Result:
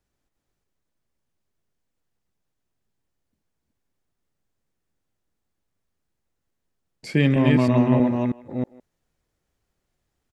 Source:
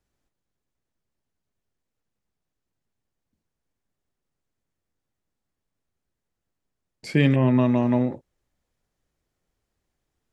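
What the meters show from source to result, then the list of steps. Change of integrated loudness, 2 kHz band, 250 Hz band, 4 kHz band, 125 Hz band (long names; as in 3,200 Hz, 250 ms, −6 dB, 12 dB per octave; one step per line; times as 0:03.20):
+0.5 dB, +2.0 dB, +2.5 dB, +2.0 dB, +1.5 dB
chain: delay that plays each chunk backwards 320 ms, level −2 dB
far-end echo of a speakerphone 160 ms, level −19 dB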